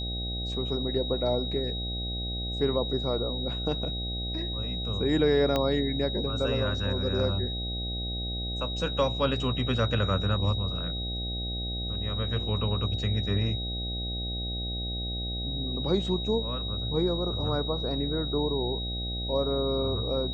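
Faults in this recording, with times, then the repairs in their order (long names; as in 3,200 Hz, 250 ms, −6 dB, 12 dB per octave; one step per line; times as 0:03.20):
mains buzz 60 Hz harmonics 13 −34 dBFS
whistle 3,800 Hz −34 dBFS
0:05.56: click −13 dBFS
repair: click removal
notch filter 3,800 Hz, Q 30
hum removal 60 Hz, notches 13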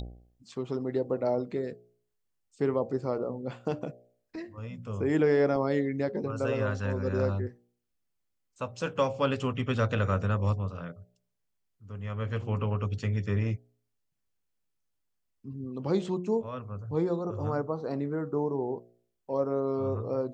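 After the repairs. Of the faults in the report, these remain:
0:05.56: click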